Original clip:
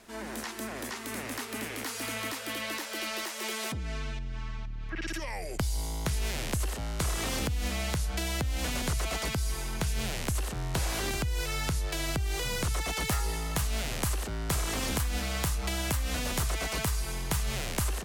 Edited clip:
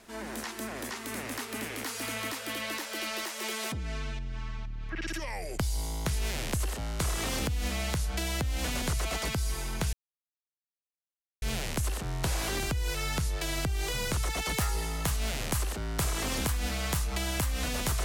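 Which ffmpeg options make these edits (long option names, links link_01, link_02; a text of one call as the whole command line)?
ffmpeg -i in.wav -filter_complex "[0:a]asplit=2[link_01][link_02];[link_01]atrim=end=9.93,asetpts=PTS-STARTPTS,afade=type=out:start_time=9.926:duration=0.004:curve=hsin,apad=pad_dur=1.49[link_03];[link_02]atrim=start=9.93,asetpts=PTS-STARTPTS,afade=type=in:duration=0.004:curve=hsin[link_04];[link_03][link_04]concat=n=2:v=0:a=1" out.wav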